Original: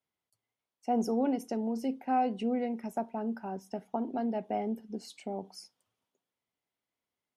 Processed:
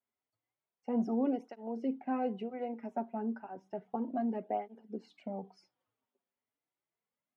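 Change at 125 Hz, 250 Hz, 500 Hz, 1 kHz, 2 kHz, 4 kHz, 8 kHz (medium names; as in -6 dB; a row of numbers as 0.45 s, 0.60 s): no reading, -2.5 dB, -3.5 dB, -6.0 dB, -5.0 dB, under -10 dB, under -20 dB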